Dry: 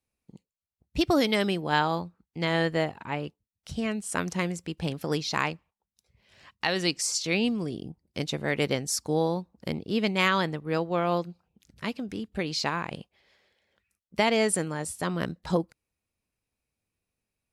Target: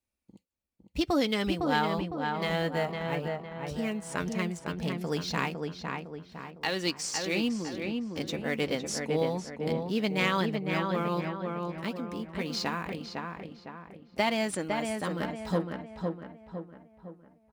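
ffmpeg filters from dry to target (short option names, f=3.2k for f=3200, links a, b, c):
-filter_complex "[0:a]flanger=delay=3.3:depth=1.9:regen=-44:speed=0.14:shape=triangular,acrossover=split=2200[a][b];[b]acrusher=bits=2:mode=log:mix=0:aa=0.000001[c];[a][c]amix=inputs=2:normalize=0,acrossover=split=8300[d][e];[e]acompressor=threshold=-52dB:ratio=4:attack=1:release=60[f];[d][f]amix=inputs=2:normalize=0,asplit=2[g][h];[h]adelay=507,lowpass=f=2.2k:p=1,volume=-3.5dB,asplit=2[i][j];[j]adelay=507,lowpass=f=2.2k:p=1,volume=0.48,asplit=2[k][l];[l]adelay=507,lowpass=f=2.2k:p=1,volume=0.48,asplit=2[m][n];[n]adelay=507,lowpass=f=2.2k:p=1,volume=0.48,asplit=2[o][p];[p]adelay=507,lowpass=f=2.2k:p=1,volume=0.48,asplit=2[q][r];[r]adelay=507,lowpass=f=2.2k:p=1,volume=0.48[s];[g][i][k][m][o][q][s]amix=inputs=7:normalize=0"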